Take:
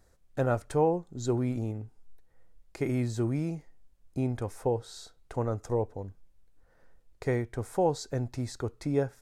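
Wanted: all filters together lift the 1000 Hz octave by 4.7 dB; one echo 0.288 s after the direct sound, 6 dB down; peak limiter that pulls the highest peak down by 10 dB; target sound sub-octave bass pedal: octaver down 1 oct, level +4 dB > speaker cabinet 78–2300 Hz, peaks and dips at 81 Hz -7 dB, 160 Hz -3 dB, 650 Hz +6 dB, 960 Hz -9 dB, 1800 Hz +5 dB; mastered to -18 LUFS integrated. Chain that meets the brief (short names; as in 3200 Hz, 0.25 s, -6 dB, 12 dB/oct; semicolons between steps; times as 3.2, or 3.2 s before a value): bell 1000 Hz +8.5 dB; limiter -21 dBFS; echo 0.288 s -6 dB; octaver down 1 oct, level +4 dB; speaker cabinet 78–2300 Hz, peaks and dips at 81 Hz -7 dB, 160 Hz -3 dB, 650 Hz +6 dB, 960 Hz -9 dB, 1800 Hz +5 dB; gain +13.5 dB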